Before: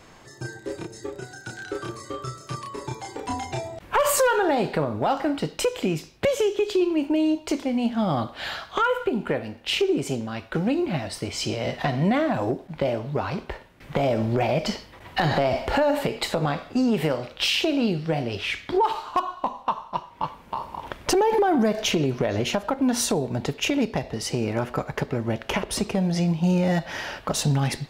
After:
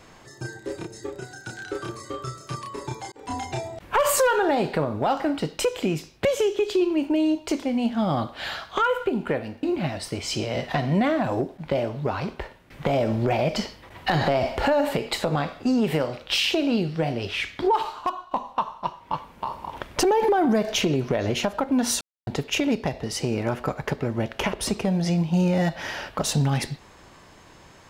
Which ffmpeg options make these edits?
-filter_complex "[0:a]asplit=6[s0][s1][s2][s3][s4][s5];[s0]atrim=end=3.12,asetpts=PTS-STARTPTS,afade=t=out:st=3.116:d=0.004:c=hsin[s6];[s1]atrim=start=3.12:end=9.632,asetpts=PTS-STARTPTS,afade=t=in:d=0.25[s7];[s2]atrim=start=10.728:end=19.41,asetpts=PTS-STARTPTS,afade=t=out:st=8.232:d=0.45:silence=0.398107[s8];[s3]atrim=start=19.41:end=23.11,asetpts=PTS-STARTPTS,afade=t=in:d=0.004:c=hsin:silence=0.398107,afade=t=out:st=3.696:d=0.004:c=hsin[s9];[s4]atrim=start=23.11:end=23.37,asetpts=PTS-STARTPTS,volume=0[s10];[s5]atrim=start=23.37,asetpts=PTS-STARTPTS,afade=t=in:d=0.004:c=hsin[s11];[s6][s7]concat=n=2:v=0:a=1[s12];[s8][s9][s10][s11]concat=n=4:v=0:a=1[s13];[s12][s13]acrossfade=d=0.004:c1=hsin:c2=hsin"

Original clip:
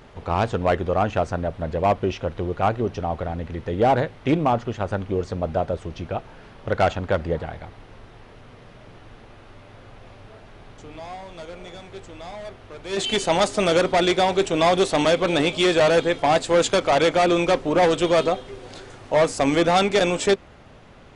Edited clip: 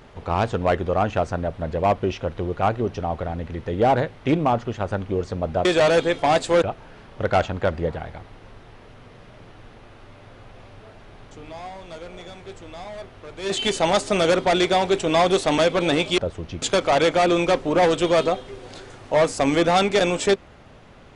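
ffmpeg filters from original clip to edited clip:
-filter_complex "[0:a]asplit=5[s0][s1][s2][s3][s4];[s0]atrim=end=5.652[s5];[s1]atrim=start=15.648:end=16.622[s6];[s2]atrim=start=6.088:end=15.652[s7];[s3]atrim=start=5.648:end=6.092[s8];[s4]atrim=start=16.618[s9];[s5][s6]acrossfade=d=0.004:c1=hsin:c2=hsin[s10];[s10][s7]acrossfade=d=0.004:c1=hsin:c2=hsin[s11];[s11][s8]acrossfade=d=0.004:c1=hsin:c2=hsin[s12];[s12][s9]acrossfade=d=0.004:c1=hsin:c2=hsin"

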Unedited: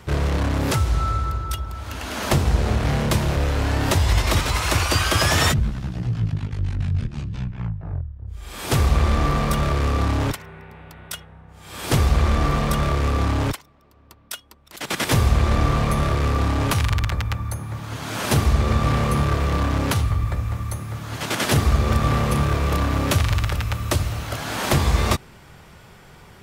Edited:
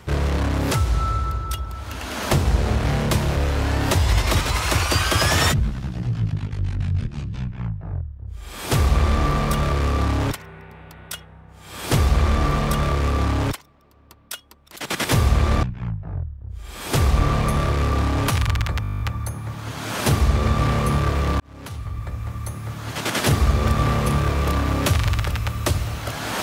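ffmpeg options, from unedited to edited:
-filter_complex "[0:a]asplit=13[s0][s1][s2][s3][s4][s5][s6][s7][s8][s9][s10][s11][s12];[s0]atrim=end=15.632[s13];[s1]atrim=start=7.408:end=8.982[s14];[s2]atrim=start=15.628:end=17.272[s15];[s3]atrim=start=17.248:end=17.272[s16];[s4]atrim=start=17.248:end=17.272[s17];[s5]atrim=start=17.248:end=17.272[s18];[s6]atrim=start=17.248:end=17.272[s19];[s7]atrim=start=17.248:end=17.272[s20];[s8]atrim=start=17.248:end=17.272[s21];[s9]atrim=start=17.248:end=17.272[s22];[s10]atrim=start=17.248:end=17.272[s23];[s11]atrim=start=17.248:end=19.65,asetpts=PTS-STARTPTS,afade=t=out:st=2.398:d=0.004:c=hsin[s24];[s12]atrim=start=19.65,asetpts=PTS-STARTPTS,afade=t=in:d=1.31[s25];[s13][s14]acrossfade=d=0.004:c1=hsin:c2=hsin[s26];[s26][s15]acrossfade=d=0.004:c1=hsin:c2=hsin[s27];[s27][s16]acrossfade=d=0.004:c1=hsin:c2=hsin[s28];[s28][s17]acrossfade=d=0.004:c1=hsin:c2=hsin[s29];[s29][s18]acrossfade=d=0.004:c1=hsin:c2=hsin[s30];[s30][s19]acrossfade=d=0.004:c1=hsin:c2=hsin[s31];[s31][s20]acrossfade=d=0.004:c1=hsin:c2=hsin[s32];[s32][s21]acrossfade=d=0.004:c1=hsin:c2=hsin[s33];[s33][s22]acrossfade=d=0.004:c1=hsin:c2=hsin[s34];[s34][s23]acrossfade=d=0.004:c1=hsin:c2=hsin[s35];[s24][s25]concat=n=2:v=0:a=1[s36];[s35][s36]acrossfade=d=0.004:c1=hsin:c2=hsin"

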